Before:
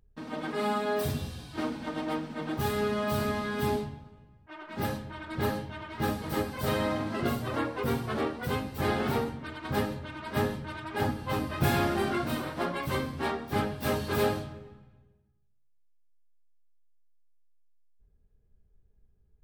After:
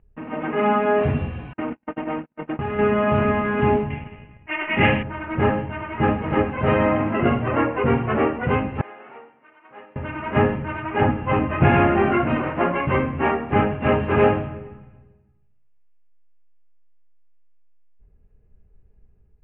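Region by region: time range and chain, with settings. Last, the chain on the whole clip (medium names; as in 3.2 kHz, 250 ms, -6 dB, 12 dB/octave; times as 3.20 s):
1.53–2.79 s: gate -34 dBFS, range -50 dB + compression 4:1, threshold -33 dBFS
3.90–5.03 s: high-order bell 2.5 kHz +12.5 dB 1.1 oct + waveshaping leveller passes 1
8.81–9.96 s: band-pass filter 490 Hz, Q 0.67 + differentiator
whole clip: Chebyshev low-pass 2.8 kHz, order 6; band-stop 1.6 kHz, Q 27; level rider gain up to 4 dB; trim +7 dB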